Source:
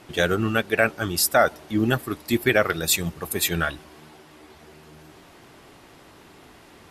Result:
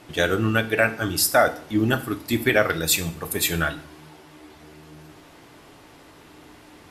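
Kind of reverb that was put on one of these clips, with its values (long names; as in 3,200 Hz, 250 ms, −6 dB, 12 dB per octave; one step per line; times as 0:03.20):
feedback delay network reverb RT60 0.48 s, low-frequency decay 1.25×, high-frequency decay 1×, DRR 8 dB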